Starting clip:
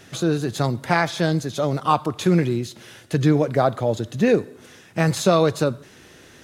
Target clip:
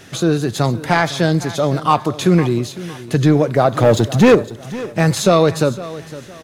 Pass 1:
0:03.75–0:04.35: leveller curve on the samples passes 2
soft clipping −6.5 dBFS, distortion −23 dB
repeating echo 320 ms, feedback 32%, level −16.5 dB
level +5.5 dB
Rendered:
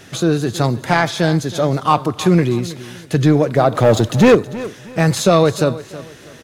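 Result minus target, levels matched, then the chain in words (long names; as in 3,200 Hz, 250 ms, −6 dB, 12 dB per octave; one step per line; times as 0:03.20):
echo 188 ms early
0:03.75–0:04.35: leveller curve on the samples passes 2
soft clipping −6.5 dBFS, distortion −23 dB
repeating echo 508 ms, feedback 32%, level −16.5 dB
level +5.5 dB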